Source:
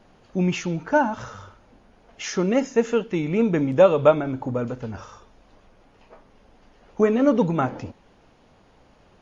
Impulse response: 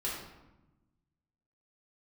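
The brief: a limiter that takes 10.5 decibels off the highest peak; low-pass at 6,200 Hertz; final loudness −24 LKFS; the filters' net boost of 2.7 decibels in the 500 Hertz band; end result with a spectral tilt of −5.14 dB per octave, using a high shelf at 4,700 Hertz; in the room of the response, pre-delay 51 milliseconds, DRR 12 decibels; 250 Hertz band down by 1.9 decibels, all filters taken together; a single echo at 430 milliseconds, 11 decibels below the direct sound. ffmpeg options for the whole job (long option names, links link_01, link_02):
-filter_complex "[0:a]lowpass=6200,equalizer=frequency=250:width_type=o:gain=-3.5,equalizer=frequency=500:width_type=o:gain=4,highshelf=frequency=4700:gain=-7.5,alimiter=limit=-12.5dB:level=0:latency=1,aecho=1:1:430:0.282,asplit=2[link_01][link_02];[1:a]atrim=start_sample=2205,adelay=51[link_03];[link_02][link_03]afir=irnorm=-1:irlink=0,volume=-16dB[link_04];[link_01][link_04]amix=inputs=2:normalize=0"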